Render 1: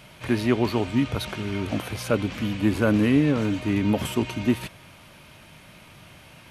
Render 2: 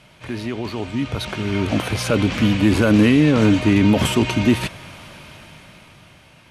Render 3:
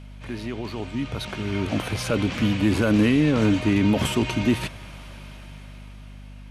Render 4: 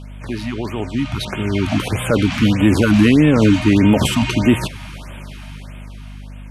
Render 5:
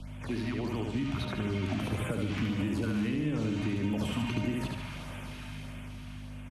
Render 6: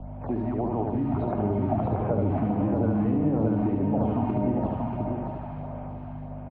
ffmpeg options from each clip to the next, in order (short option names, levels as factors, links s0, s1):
-filter_complex "[0:a]lowpass=9800,acrossover=split=2600[s0][s1];[s0]alimiter=limit=0.141:level=0:latency=1:release=23[s2];[s2][s1]amix=inputs=2:normalize=0,dynaudnorm=f=230:g=13:m=5.31,volume=0.841"
-af "aeval=exprs='val(0)+0.0178*(sin(2*PI*50*n/s)+sin(2*PI*2*50*n/s)/2+sin(2*PI*3*50*n/s)/3+sin(2*PI*4*50*n/s)/4+sin(2*PI*5*50*n/s)/5)':c=same,volume=0.562"
-af "afftfilt=real='re*(1-between(b*sr/1024,400*pow(5300/400,0.5+0.5*sin(2*PI*1.6*pts/sr))/1.41,400*pow(5300/400,0.5+0.5*sin(2*PI*1.6*pts/sr))*1.41))':imag='im*(1-between(b*sr/1024,400*pow(5300/400,0.5+0.5*sin(2*PI*1.6*pts/sr))/1.41,400*pow(5300/400,0.5+0.5*sin(2*PI*1.6*pts/sr))*1.41))':win_size=1024:overlap=0.75,volume=2.37"
-filter_complex "[0:a]acompressor=threshold=0.178:ratio=6,aecho=1:1:72|144|216|288|360:0.631|0.271|0.117|0.0502|0.0216,acrossover=split=95|290|3000[s0][s1][s2][s3];[s0]acompressor=threshold=0.0224:ratio=4[s4];[s1]acompressor=threshold=0.0562:ratio=4[s5];[s2]acompressor=threshold=0.0316:ratio=4[s6];[s3]acompressor=threshold=0.00631:ratio=4[s7];[s4][s5][s6][s7]amix=inputs=4:normalize=0,volume=0.422"
-filter_complex "[0:a]lowpass=f=750:t=q:w=4,asplit=2[s0][s1];[s1]aecho=0:1:633:0.596[s2];[s0][s2]amix=inputs=2:normalize=0,volume=1.58"